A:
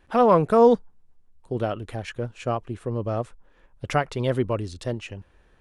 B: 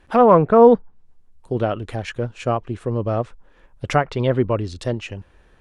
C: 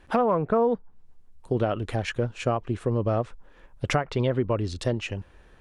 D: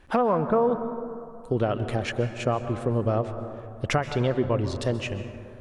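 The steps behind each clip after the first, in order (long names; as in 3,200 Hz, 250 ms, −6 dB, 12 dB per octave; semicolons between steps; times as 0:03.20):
treble cut that deepens with the level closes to 2,100 Hz, closed at −18.5 dBFS; level +5 dB
downward compressor 6 to 1, threshold −20 dBFS, peak gain reduction 13.5 dB
dense smooth reverb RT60 2.5 s, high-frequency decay 0.3×, pre-delay 115 ms, DRR 9 dB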